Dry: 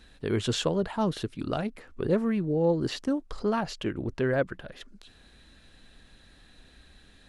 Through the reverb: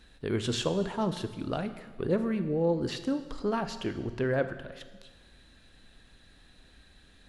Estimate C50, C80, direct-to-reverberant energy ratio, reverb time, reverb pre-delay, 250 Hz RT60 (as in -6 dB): 11.5 dB, 13.0 dB, 9.5 dB, 1.4 s, 8 ms, 1.5 s